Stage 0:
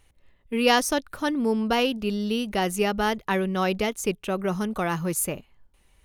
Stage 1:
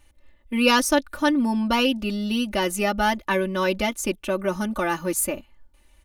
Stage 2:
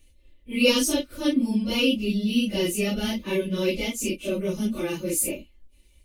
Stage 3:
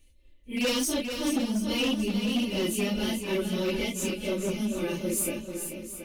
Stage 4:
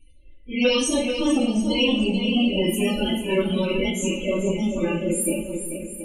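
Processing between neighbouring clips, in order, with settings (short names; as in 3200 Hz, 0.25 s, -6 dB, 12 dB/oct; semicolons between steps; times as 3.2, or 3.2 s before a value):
comb 3.4 ms, depth 92%
phase scrambler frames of 0.1 s; band shelf 1100 Hz -15 dB
hard clip -20.5 dBFS, distortion -11 dB; swung echo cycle 0.727 s, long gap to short 1.5:1, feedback 34%, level -7.5 dB; gain -3 dB
loudest bins only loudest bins 32; two-slope reverb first 0.48 s, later 4.1 s, from -22 dB, DRR 0 dB; gain +5 dB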